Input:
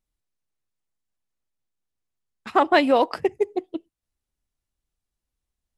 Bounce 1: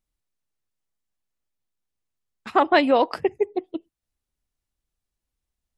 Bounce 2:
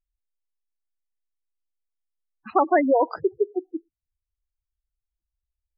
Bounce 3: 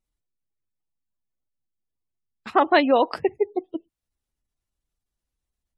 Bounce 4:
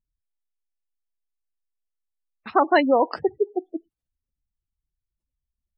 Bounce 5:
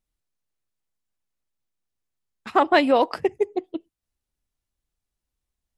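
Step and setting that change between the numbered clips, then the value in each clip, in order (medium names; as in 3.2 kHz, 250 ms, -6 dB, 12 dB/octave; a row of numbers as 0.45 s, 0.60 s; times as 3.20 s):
spectral gate, under each frame's peak: -50 dB, -10 dB, -35 dB, -20 dB, -60 dB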